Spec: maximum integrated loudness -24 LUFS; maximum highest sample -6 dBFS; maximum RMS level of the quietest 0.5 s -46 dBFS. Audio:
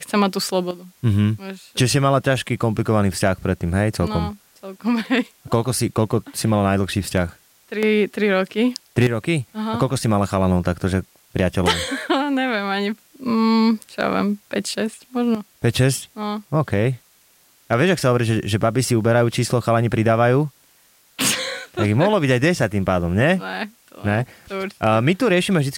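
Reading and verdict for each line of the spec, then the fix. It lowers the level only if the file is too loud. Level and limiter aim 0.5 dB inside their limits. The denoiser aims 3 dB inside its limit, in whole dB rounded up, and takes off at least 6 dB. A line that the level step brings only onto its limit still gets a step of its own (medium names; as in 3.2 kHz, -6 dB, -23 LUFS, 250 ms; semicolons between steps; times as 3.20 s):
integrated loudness -20.5 LUFS: fail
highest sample -5.0 dBFS: fail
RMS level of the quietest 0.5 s -56 dBFS: pass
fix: trim -4 dB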